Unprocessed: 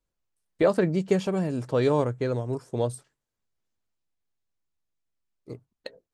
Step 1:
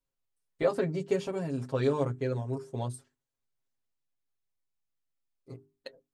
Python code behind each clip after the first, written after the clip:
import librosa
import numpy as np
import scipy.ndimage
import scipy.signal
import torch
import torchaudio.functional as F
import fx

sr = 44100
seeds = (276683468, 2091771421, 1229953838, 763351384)

y = fx.hum_notches(x, sr, base_hz=50, count=8)
y = y + 0.95 * np.pad(y, (int(7.4 * sr / 1000.0), 0))[:len(y)]
y = F.gain(torch.from_numpy(y), -8.0).numpy()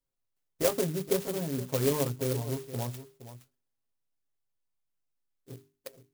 y = x + 10.0 ** (-13.5 / 20.0) * np.pad(x, (int(468 * sr / 1000.0), 0))[:len(x)]
y = fx.clock_jitter(y, sr, seeds[0], jitter_ms=0.13)